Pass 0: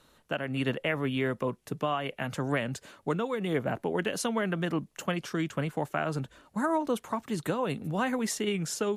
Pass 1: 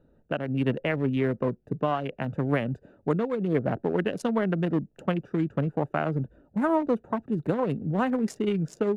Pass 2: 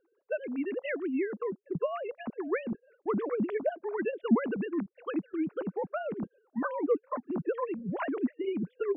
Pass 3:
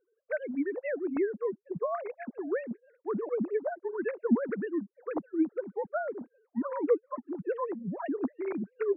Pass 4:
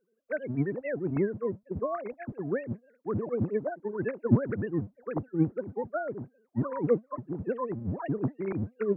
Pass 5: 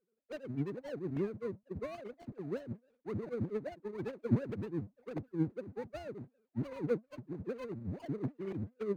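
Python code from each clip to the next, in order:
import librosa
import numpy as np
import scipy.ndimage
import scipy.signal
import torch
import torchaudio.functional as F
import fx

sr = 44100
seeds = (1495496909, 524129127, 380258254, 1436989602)

y1 = fx.wiener(x, sr, points=41)
y1 = fx.high_shelf(y1, sr, hz=2500.0, db=-11.5)
y1 = F.gain(torch.from_numpy(y1), 5.5).numpy()
y2 = fx.sine_speech(y1, sr)
y2 = fx.hpss(y2, sr, part='harmonic', gain_db=-8)
y2 = F.gain(torch.from_numpy(y2), -1.0).numpy()
y3 = fx.sine_speech(y2, sr)
y4 = fx.octave_divider(y3, sr, octaves=1, level_db=1.0)
y5 = scipy.ndimage.median_filter(y4, 41, mode='constant')
y5 = F.gain(torch.from_numpy(y5), -7.0).numpy()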